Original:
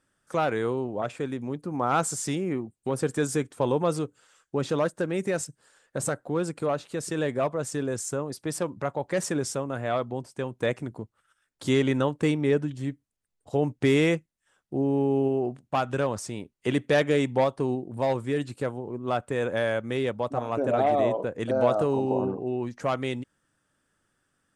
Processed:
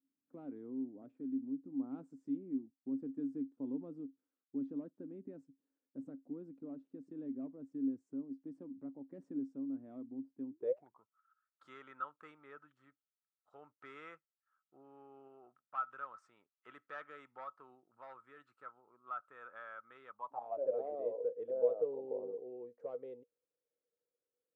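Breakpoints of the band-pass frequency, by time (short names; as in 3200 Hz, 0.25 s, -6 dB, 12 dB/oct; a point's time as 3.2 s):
band-pass, Q 18
10.51 s 270 Hz
11.01 s 1300 Hz
20.09 s 1300 Hz
20.74 s 480 Hz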